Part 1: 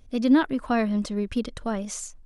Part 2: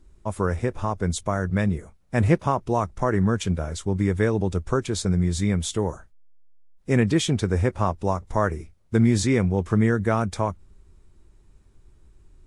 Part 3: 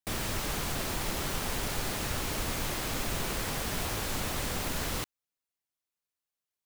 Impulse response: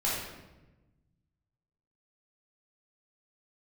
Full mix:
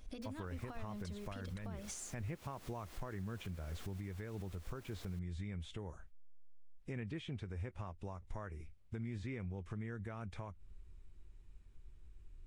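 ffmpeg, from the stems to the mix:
-filter_complex "[0:a]lowshelf=f=380:g=-7,acompressor=threshold=-37dB:ratio=4,bandreject=f=60:t=h:w=6,bandreject=f=120:t=h:w=6,bandreject=f=180:t=h:w=6,bandreject=f=240:t=h:w=6,bandreject=f=300:t=h:w=6,bandreject=f=360:t=h:w=6,bandreject=f=420:t=h:w=6,bandreject=f=480:t=h:w=6,volume=0.5dB[a];[1:a]acrossover=split=2900[b][c];[c]acompressor=threshold=-46dB:ratio=4:attack=1:release=60[d];[b][d]amix=inputs=2:normalize=0,equalizer=f=2.6k:t=o:w=1.3:g=8.5,acompressor=threshold=-27dB:ratio=3,volume=-13dB,asplit=2[e][f];[2:a]highpass=200,bandreject=f=900:w=16,adelay=150,volume=-17.5dB[g];[f]apad=whole_len=299961[h];[g][h]sidechaincompress=threshold=-50dB:ratio=3:attack=6.9:release=119[i];[a][i]amix=inputs=2:normalize=0,lowshelf=f=200:g=-5,acompressor=threshold=-43dB:ratio=6,volume=0dB[j];[e][j]amix=inputs=2:normalize=0,lowshelf=f=92:g=12,alimiter=level_in=10.5dB:limit=-24dB:level=0:latency=1:release=299,volume=-10.5dB"

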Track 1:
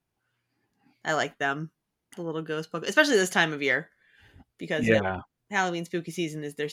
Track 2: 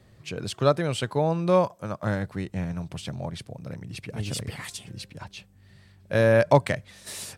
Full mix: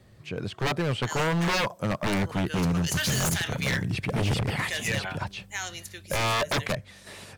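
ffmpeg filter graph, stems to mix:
-filter_complex "[0:a]aderivative,alimiter=level_in=4dB:limit=-24dB:level=0:latency=1:release=42,volume=-4dB,volume=3dB[a];[1:a]acrossover=split=3200[b][c];[c]acompressor=threshold=-52dB:ratio=4:attack=1:release=60[d];[b][d]amix=inputs=2:normalize=0,volume=0.5dB[e];[a][e]amix=inputs=2:normalize=0,dynaudnorm=f=210:g=11:m=9.5dB,aeval=exprs='0.1*(abs(mod(val(0)/0.1+3,4)-2)-1)':c=same"

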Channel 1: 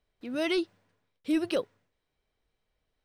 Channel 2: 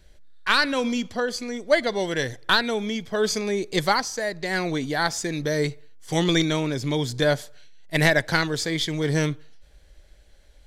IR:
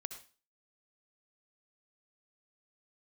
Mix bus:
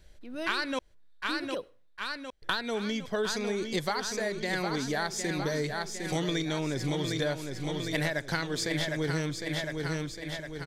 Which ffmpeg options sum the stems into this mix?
-filter_complex "[0:a]volume=-8dB,asplit=2[a][b];[b]volume=-12dB[c];[1:a]volume=-2.5dB,asplit=3[d][e][f];[d]atrim=end=0.79,asetpts=PTS-STARTPTS,afade=t=out:st=0.786:d=0.004:c=hsin[g];[e]atrim=start=0.79:end=2.42,asetpts=PTS-STARTPTS,volume=0[h];[f]atrim=start=2.42,asetpts=PTS-STARTPTS,afade=t=in:d=0.004:c=hsin[i];[g][h][i]concat=n=3:v=0:a=1,asplit=2[j][k];[k]volume=-7.5dB[l];[2:a]atrim=start_sample=2205[m];[c][m]afir=irnorm=-1:irlink=0[n];[l]aecho=0:1:757|1514|2271|3028|3785|4542|5299|6056:1|0.52|0.27|0.141|0.0731|0.038|0.0198|0.0103[o];[a][j][n][o]amix=inputs=4:normalize=0,acompressor=threshold=-27dB:ratio=6"

